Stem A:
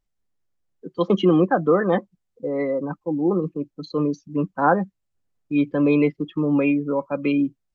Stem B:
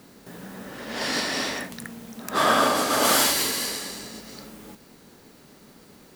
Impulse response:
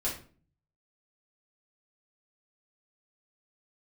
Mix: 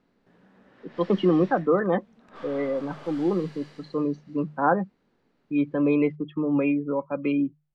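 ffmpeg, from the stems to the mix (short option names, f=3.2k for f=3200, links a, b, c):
-filter_complex "[0:a]volume=-3.5dB[a];[1:a]aeval=exprs='(tanh(20*val(0)+0.55)-tanh(0.55))/20':c=same,volume=-15dB[b];[a][b]amix=inputs=2:normalize=0,lowpass=2.9k,bandreject=f=50:t=h:w=6,bandreject=f=100:t=h:w=6,bandreject=f=150:t=h:w=6"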